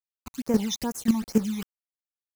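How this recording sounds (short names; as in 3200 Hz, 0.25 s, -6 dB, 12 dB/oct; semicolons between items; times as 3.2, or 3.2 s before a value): a quantiser's noise floor 6-bit, dither none; phasing stages 12, 2.4 Hz, lowest notch 470–3800 Hz; chopped level 3.7 Hz, depth 65%, duty 10%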